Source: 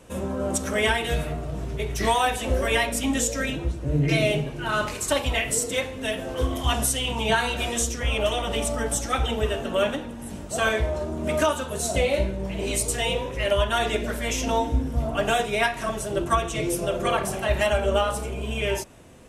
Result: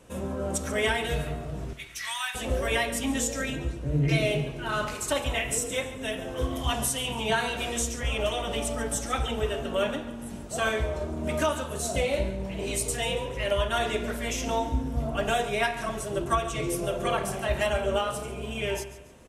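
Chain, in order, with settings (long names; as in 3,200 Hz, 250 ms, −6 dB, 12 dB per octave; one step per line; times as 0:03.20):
0:01.73–0:02.35: high-pass filter 1,300 Hz 24 dB per octave
0:05.13–0:06.43: notch filter 4,500 Hz, Q 6.5
repeating echo 141 ms, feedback 37%, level −15 dB
convolution reverb RT60 1.4 s, pre-delay 3 ms, DRR 14.5 dB
level −4 dB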